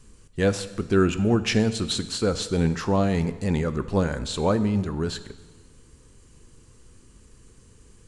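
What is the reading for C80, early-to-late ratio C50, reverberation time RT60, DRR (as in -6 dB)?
15.5 dB, 14.0 dB, 1.4 s, 11.5 dB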